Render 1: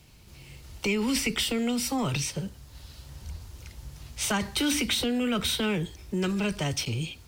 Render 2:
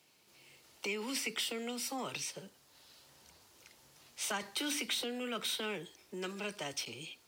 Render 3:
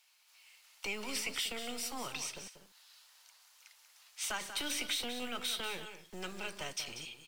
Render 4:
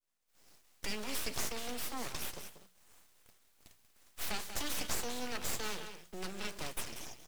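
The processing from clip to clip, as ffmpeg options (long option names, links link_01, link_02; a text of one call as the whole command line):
ffmpeg -i in.wav -af "highpass=350,volume=-8dB" out.wav
ffmpeg -i in.wav -filter_complex "[0:a]acrossover=split=840|2500[link_01][link_02][link_03];[link_01]acrusher=bits=6:dc=4:mix=0:aa=0.000001[link_04];[link_04][link_02][link_03]amix=inputs=3:normalize=0,aecho=1:1:188|244:0.316|0.112" out.wav
ffmpeg -i in.wav -af "aeval=exprs='abs(val(0))':channel_layout=same,agate=range=-33dB:threshold=-57dB:ratio=3:detection=peak,bandreject=frequency=60:width_type=h:width=6,bandreject=frequency=120:width_type=h:width=6,bandreject=frequency=180:width_type=h:width=6,volume=2.5dB" out.wav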